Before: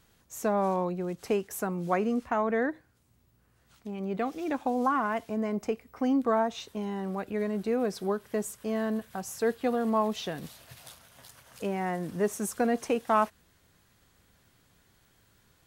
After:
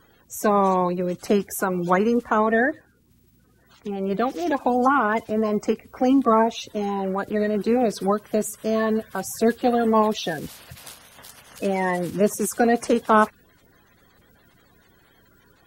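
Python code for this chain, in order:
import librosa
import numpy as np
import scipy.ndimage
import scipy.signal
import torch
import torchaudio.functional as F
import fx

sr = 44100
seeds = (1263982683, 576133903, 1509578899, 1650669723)

y = fx.spec_quant(x, sr, step_db=30)
y = y * 10.0 ** (8.5 / 20.0)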